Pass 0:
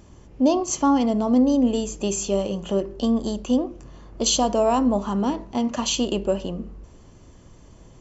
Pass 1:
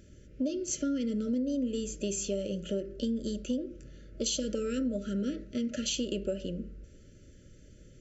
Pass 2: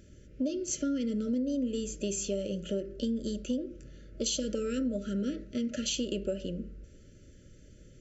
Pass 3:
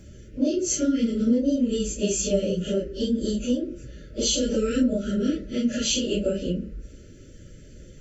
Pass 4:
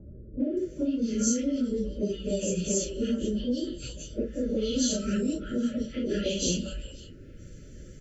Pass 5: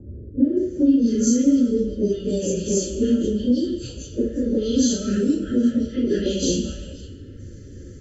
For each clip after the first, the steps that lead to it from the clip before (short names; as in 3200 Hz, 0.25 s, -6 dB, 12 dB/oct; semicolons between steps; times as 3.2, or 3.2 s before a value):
FFT band-reject 630–1300 Hz; compressor, threshold -22 dBFS, peak gain reduction 8.5 dB; gain -6 dB
nothing audible
phase scrambler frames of 0.1 s; gain +8.5 dB
compressor, threshold -24 dBFS, peak gain reduction 8.5 dB; three bands offset in time lows, mids, highs 0.4/0.57 s, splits 810/3300 Hz
reverb RT60 1.0 s, pre-delay 3 ms, DRR 3.5 dB; flange 0.54 Hz, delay 8 ms, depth 6.7 ms, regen -58%